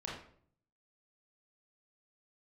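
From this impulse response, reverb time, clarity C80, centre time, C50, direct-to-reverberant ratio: 0.55 s, 7.5 dB, 46 ms, 2.5 dB, -4.5 dB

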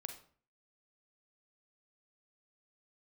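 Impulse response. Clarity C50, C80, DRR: 8.5 dB, 13.0 dB, 5.0 dB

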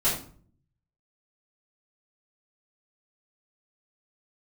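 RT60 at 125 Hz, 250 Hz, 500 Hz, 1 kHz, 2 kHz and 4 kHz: 1.0, 0.75, 0.50, 0.45, 0.35, 0.35 s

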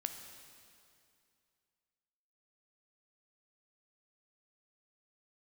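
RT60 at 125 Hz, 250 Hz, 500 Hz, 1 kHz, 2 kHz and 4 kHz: 2.5, 2.5, 2.5, 2.4, 2.3, 2.3 s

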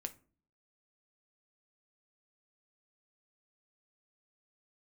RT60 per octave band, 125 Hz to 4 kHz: 0.65, 0.65, 0.45, 0.35, 0.30, 0.20 s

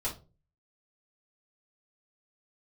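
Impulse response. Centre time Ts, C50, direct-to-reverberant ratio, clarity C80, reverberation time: 18 ms, 10.5 dB, -7.5 dB, 18.5 dB, 0.35 s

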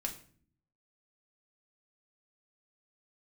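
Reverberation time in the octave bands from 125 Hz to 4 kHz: 0.95, 0.90, 0.55, 0.45, 0.45, 0.35 s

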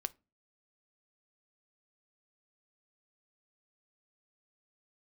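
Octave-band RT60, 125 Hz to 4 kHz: 0.50, 0.45, 0.30, 0.25, 0.20, 0.20 s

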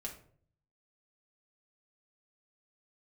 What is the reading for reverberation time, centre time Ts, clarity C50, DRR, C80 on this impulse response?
0.55 s, 18 ms, 9.5 dB, -1.5 dB, 13.5 dB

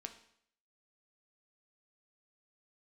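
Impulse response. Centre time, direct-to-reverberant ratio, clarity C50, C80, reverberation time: 11 ms, 5.5 dB, 11.0 dB, 14.0 dB, 0.65 s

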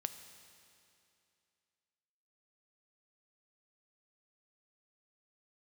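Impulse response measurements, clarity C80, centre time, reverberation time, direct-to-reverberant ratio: 11.0 dB, 23 ms, 2.6 s, 9.0 dB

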